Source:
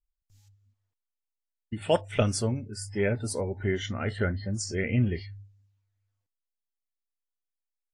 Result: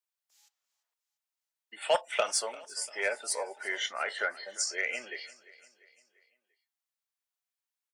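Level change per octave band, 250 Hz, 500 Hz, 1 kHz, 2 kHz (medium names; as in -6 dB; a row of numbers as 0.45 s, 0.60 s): -24.0 dB, -4.5 dB, +2.0 dB, +3.5 dB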